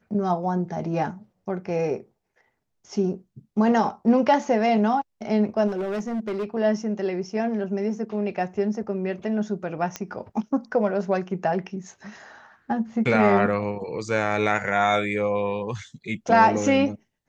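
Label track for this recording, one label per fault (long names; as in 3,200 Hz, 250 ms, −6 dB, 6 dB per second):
5.670000	6.450000	clipping −24 dBFS
9.960000	9.960000	click −14 dBFS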